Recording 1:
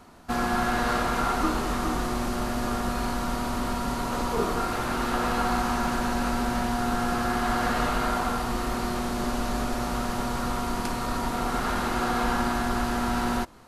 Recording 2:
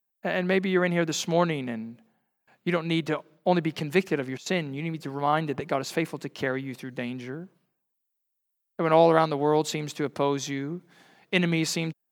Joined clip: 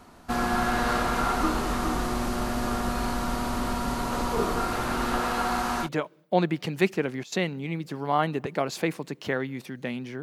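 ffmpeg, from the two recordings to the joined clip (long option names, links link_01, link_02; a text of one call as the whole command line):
ffmpeg -i cue0.wav -i cue1.wav -filter_complex "[0:a]asettb=1/sr,asplit=3[link_01][link_02][link_03];[link_01]atrim=end=5.204[link_04];[link_02]atrim=start=5.2:end=5.89,asetpts=PTS-STARTPTS,afade=type=in:duration=0.004:curve=qsin,afade=type=out:start_time=0.686:duration=0.004:curve=qsin,lowshelf=frequency=250:gain=-7[link_05];[link_03]atrim=start=5.886[link_06];[link_04][link_05]acrossfade=duration=0.004:curve1=hsin:curve2=qsin[link_07];[link_07][link_06]acrossfade=duration=0.004:curve1=qsin:curve2=hsin,apad=whole_dur=10.22,atrim=end=10.22,atrim=end=5.89,asetpts=PTS-STARTPTS[link_08];[1:a]atrim=start=2.95:end=7.36,asetpts=PTS-STARTPTS[link_09];[link_08][link_09]acrossfade=duration=0.08:curve1=tri:curve2=tri" out.wav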